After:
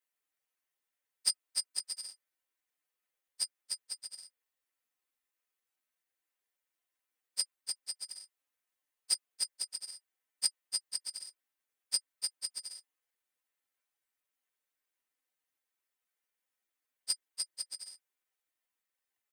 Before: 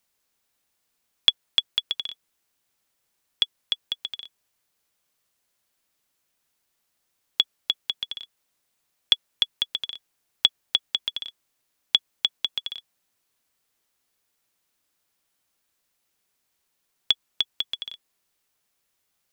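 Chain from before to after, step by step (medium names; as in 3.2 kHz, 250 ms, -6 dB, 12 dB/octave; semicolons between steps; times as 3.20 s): frequency axis rescaled in octaves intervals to 127%; peaking EQ 3.2 kHz -14 dB 1 oct; ring modulator 1.9 kHz; resonant low shelf 260 Hz -6.5 dB, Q 1.5; comb 3.9 ms, depth 34%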